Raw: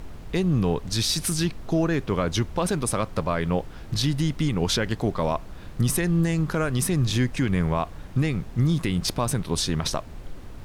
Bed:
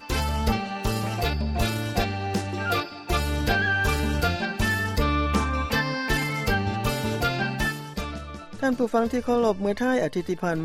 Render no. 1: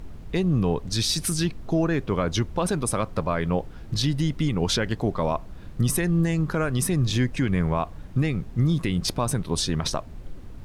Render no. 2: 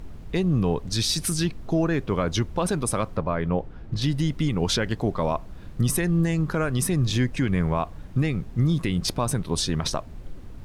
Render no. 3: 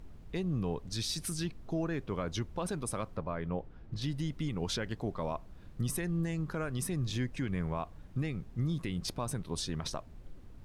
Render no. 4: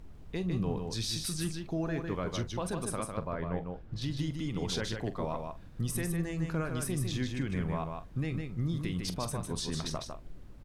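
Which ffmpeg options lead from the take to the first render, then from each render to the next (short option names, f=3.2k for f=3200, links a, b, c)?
-af "afftdn=nr=6:nf=-41"
-filter_complex "[0:a]asettb=1/sr,asplit=3[a][b][c];[a]atrim=end=3.164[d];[b]atrim=start=3.16:end=4.02,asetpts=PTS-STARTPTS,afade=t=in:d=0.004:c=qsin,afade=t=out:st=0.856:d=0.004:c=qsin,lowpass=f=1.8k:p=1[e];[c]atrim=start=4.016[f];[d][e]acrossfade=d=0.004:c1=hsin:c2=qsin[g];[g][f]acrossfade=d=0.004:c1=qsin:c2=hsin"
-af "volume=-11dB"
-filter_complex "[0:a]asplit=2[a][b];[b]adelay=44,volume=-13dB[c];[a][c]amix=inputs=2:normalize=0,aecho=1:1:153:0.562"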